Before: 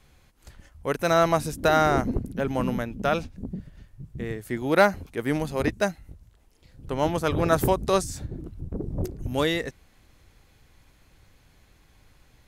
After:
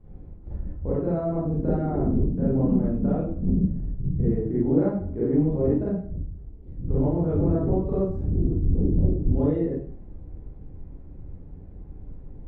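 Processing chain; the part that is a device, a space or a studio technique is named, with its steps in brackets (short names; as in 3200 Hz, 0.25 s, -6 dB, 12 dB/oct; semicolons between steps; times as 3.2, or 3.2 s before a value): television next door (compressor 4:1, threshold -35 dBFS, peak gain reduction 18 dB; LPF 370 Hz 12 dB/oct; reverb RT60 0.50 s, pre-delay 31 ms, DRR -9 dB); 5.84–7.04 bell 820 Hz -3.5 dB 1.4 oct; gain +6.5 dB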